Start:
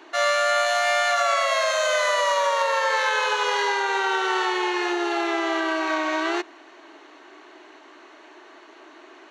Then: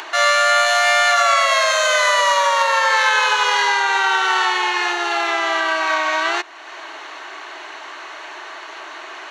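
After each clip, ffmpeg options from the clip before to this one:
-filter_complex "[0:a]highpass=760,asplit=2[s0][s1];[s1]acompressor=mode=upward:threshold=0.0501:ratio=2.5,volume=1.19[s2];[s0][s2]amix=inputs=2:normalize=0,volume=1.12"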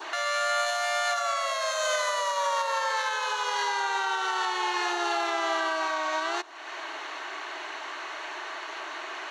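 -af "adynamicequalizer=threshold=0.0251:dfrequency=2200:dqfactor=1.2:tfrequency=2200:tqfactor=1.2:attack=5:release=100:ratio=0.375:range=3.5:mode=cutabove:tftype=bell,alimiter=limit=0.188:level=0:latency=1:release=420,volume=0.708"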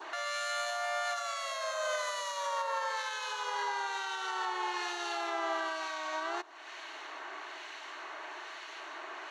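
-filter_complex "[0:a]acrossover=split=1900[s0][s1];[s0]aeval=exprs='val(0)*(1-0.5/2+0.5/2*cos(2*PI*1.1*n/s))':c=same[s2];[s1]aeval=exprs='val(0)*(1-0.5/2-0.5/2*cos(2*PI*1.1*n/s))':c=same[s3];[s2][s3]amix=inputs=2:normalize=0,volume=0.562"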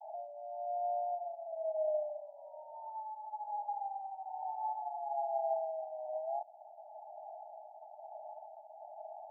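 -af "asuperpass=centerf=720:order=20:qfactor=2.6,volume=1.5"

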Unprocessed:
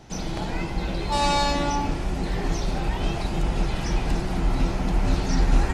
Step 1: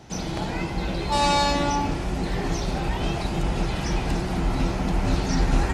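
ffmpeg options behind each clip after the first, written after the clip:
-af "highpass=44,volume=1.19"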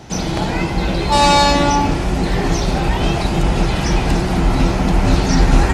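-af "asoftclip=type=hard:threshold=0.266,volume=2.82"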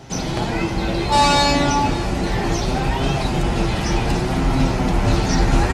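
-af "flanger=delay=7.4:depth=1.7:regen=52:speed=0.66:shape=sinusoidal,aecho=1:1:559:0.141,volume=1.19"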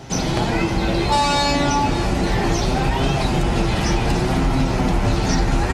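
-af "acompressor=threshold=0.141:ratio=6,volume=1.41"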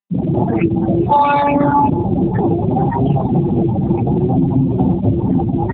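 -af "afftfilt=real='re*gte(hypot(re,im),0.251)':imag='im*gte(hypot(re,im),0.251)':win_size=1024:overlap=0.75,volume=2.37" -ar 8000 -c:a libopencore_amrnb -b:a 6700

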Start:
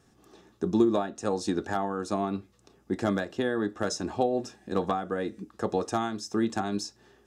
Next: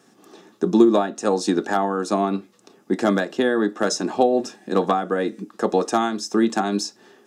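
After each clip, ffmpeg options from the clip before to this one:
-af "highpass=f=180:w=0.5412,highpass=f=180:w=1.3066,volume=2.66"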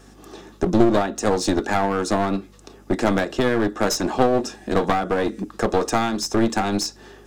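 -filter_complex "[0:a]asplit=2[s0][s1];[s1]acompressor=threshold=0.0501:ratio=6,volume=0.944[s2];[s0][s2]amix=inputs=2:normalize=0,aeval=exprs='val(0)+0.00316*(sin(2*PI*50*n/s)+sin(2*PI*2*50*n/s)/2+sin(2*PI*3*50*n/s)/3+sin(2*PI*4*50*n/s)/4+sin(2*PI*5*50*n/s)/5)':c=same,aeval=exprs='clip(val(0),-1,0.0794)':c=same"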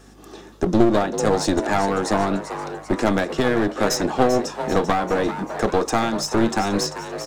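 -filter_complex "[0:a]asplit=6[s0][s1][s2][s3][s4][s5];[s1]adelay=391,afreqshift=150,volume=0.299[s6];[s2]adelay=782,afreqshift=300,volume=0.15[s7];[s3]adelay=1173,afreqshift=450,volume=0.075[s8];[s4]adelay=1564,afreqshift=600,volume=0.0372[s9];[s5]adelay=1955,afreqshift=750,volume=0.0186[s10];[s0][s6][s7][s8][s9][s10]amix=inputs=6:normalize=0"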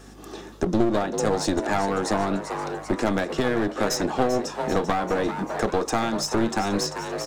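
-af "acompressor=threshold=0.0282:ratio=1.5,volume=1.26"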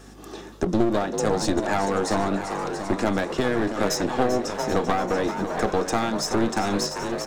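-af "aecho=1:1:683|1366|2049:0.316|0.0949|0.0285"

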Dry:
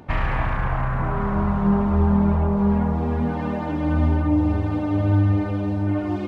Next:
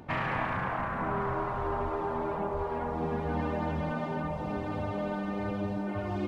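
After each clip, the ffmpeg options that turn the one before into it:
-af "afftfilt=real='re*lt(hypot(re,im),0.447)':imag='im*lt(hypot(re,im),0.447)':win_size=1024:overlap=0.75,volume=0.631"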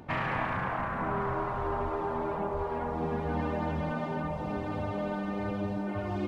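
-af anull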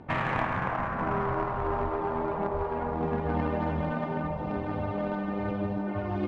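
-af "aeval=exprs='0.112*(cos(1*acos(clip(val(0)/0.112,-1,1)))-cos(1*PI/2))+0.0158*(cos(3*acos(clip(val(0)/0.112,-1,1)))-cos(3*PI/2))':c=same,adynamicsmooth=sensitivity=3.5:basefreq=3200,volume=2"

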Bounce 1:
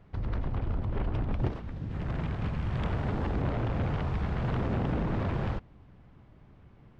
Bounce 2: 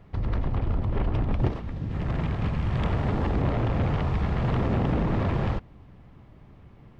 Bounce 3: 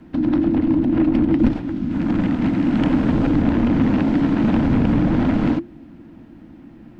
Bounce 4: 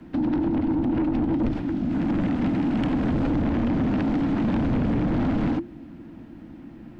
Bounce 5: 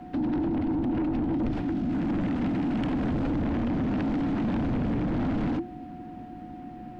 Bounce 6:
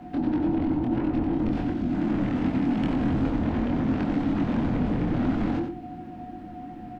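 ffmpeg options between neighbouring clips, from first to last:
-af "bandreject=f=1500:w=16,volume=1.78"
-af "afreqshift=-350,volume=2.37"
-filter_complex "[0:a]acrossover=split=130[s0][s1];[s1]acompressor=threshold=0.141:ratio=6[s2];[s0][s2]amix=inputs=2:normalize=0,asoftclip=type=tanh:threshold=0.119"
-af "aeval=exprs='val(0)+0.00631*sin(2*PI*730*n/s)':c=same,alimiter=limit=0.0708:level=0:latency=1:release=10"
-af "flanger=delay=22.5:depth=2.4:speed=2.8,aecho=1:1:92:0.447,volume=1.58"

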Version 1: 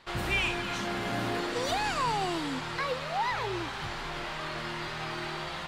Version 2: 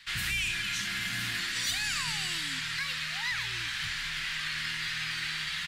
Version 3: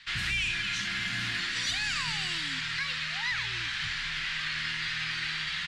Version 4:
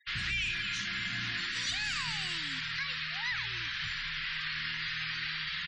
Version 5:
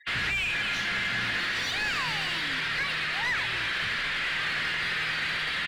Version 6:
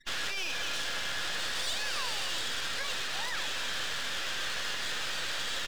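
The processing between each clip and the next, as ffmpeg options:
-filter_complex "[0:a]firequalizer=gain_entry='entry(160,0);entry(450,-24);entry(1700,11);entry(11000,14)':delay=0.05:min_phase=1,acrossover=split=290|640|5200[s0][s1][s2][s3];[s2]alimiter=limit=0.1:level=0:latency=1:release=88[s4];[s0][s1][s4][s3]amix=inputs=4:normalize=0,volume=0.596"
-af "lowpass=5600,volume=1.19"
-af "afftfilt=real='re*gte(hypot(re,im),0.00794)':imag='im*gte(hypot(re,im),0.00794)':win_size=1024:overlap=0.75,volume=0.708"
-filter_complex "[0:a]asplit=2[s0][s1];[s1]highpass=f=720:p=1,volume=7.08,asoftclip=type=tanh:threshold=0.075[s2];[s0][s2]amix=inputs=2:normalize=0,lowpass=f=1300:p=1,volume=0.501,volume=2"
-af "highpass=f=420:w=0.5412,highpass=f=420:w=1.3066,equalizer=f=540:t=q:w=4:g=8,equalizer=f=2100:t=q:w=4:g=-9,equalizer=f=3500:t=q:w=4:g=5,equalizer=f=5300:t=q:w=4:g=10,lowpass=f=5800:w=0.5412,lowpass=f=5800:w=1.3066,aeval=exprs='max(val(0),0)':c=same"

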